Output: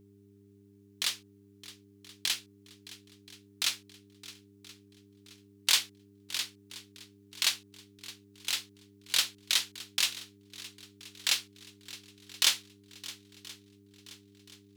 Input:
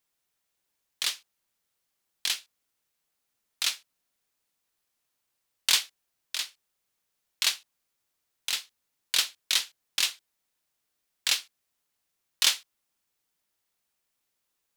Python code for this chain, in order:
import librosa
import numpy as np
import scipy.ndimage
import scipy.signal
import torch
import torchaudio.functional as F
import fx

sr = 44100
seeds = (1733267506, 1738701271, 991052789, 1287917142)

y = fx.dmg_buzz(x, sr, base_hz=100.0, harmonics=4, level_db=-57.0, tilt_db=-1, odd_only=False)
y = fx.echo_swing(y, sr, ms=1027, ratio=1.5, feedback_pct=39, wet_db=-18.0)
y = y * librosa.db_to_amplitude(-2.0)